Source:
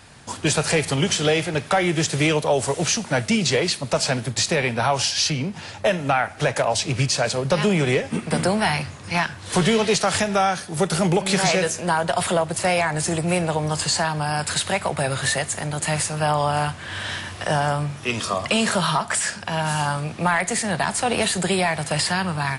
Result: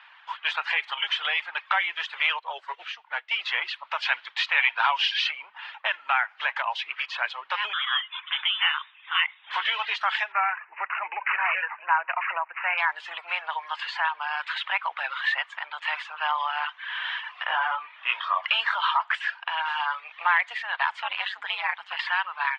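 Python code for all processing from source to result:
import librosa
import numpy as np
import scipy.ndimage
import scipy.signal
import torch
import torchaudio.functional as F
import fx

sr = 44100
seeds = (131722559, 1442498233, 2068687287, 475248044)

y = fx.chain(x, sr, fx.peak_eq(hz=390.0, db=8.5, octaves=0.97),
    fx.comb_fb(f0_hz=70.0, decay_s=0.18, harmonics='all', damping=0.0, mix_pct=50),
    fx.upward_expand(threshold_db=-34.0, expansion=1.5), at=(2.39, 3.31))
y = fx.chain(y, sr, fx.high_shelf(hz=2200.0, db=9.5),
    fx.resample_linear(factor=3), at=(4.02, 5.31))
y = fx.chain(y, sr, fx.highpass(hz=750.0, slope=6),
    fx.freq_invert(carrier_hz=3700), at=(7.73, 9.51))
y = fx.chain(y, sr, fx.lowpass(hz=6900.0, slope=24),
    fx.resample_bad(factor=8, down='none', up='filtered'), at=(10.32, 12.78))
y = fx.chain(y, sr, fx.lowpass(hz=3400.0, slope=12),
    fx.low_shelf(hz=490.0, db=4.0),
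    fx.doubler(ms=23.0, db=-4.0), at=(17.44, 18.43))
y = fx.chain(y, sr, fx.highpass(hz=55.0, slope=12),
    fx.ring_mod(carrier_hz=96.0), at=(21.02, 21.99))
y = scipy.signal.sosfilt(scipy.signal.ellip(3, 1.0, 70, [940.0, 3200.0], 'bandpass', fs=sr, output='sos'), y)
y = fx.dereverb_blind(y, sr, rt60_s=0.62)
y = y * 10.0 ** (1.5 / 20.0)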